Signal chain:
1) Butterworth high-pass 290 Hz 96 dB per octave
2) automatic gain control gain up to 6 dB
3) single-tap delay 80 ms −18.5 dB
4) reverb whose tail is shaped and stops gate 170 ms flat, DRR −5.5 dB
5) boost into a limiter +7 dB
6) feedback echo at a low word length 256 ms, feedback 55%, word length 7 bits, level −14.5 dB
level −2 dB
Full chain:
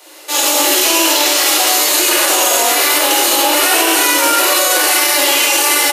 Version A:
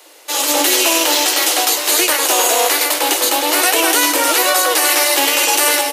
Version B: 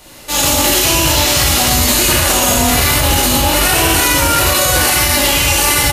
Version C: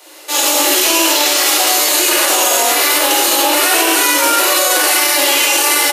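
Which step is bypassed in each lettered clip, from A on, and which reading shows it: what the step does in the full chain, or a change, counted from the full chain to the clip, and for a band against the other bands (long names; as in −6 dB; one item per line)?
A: 4, change in momentary loudness spread +2 LU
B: 1, 250 Hz band +4.0 dB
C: 6, change in crest factor −1.5 dB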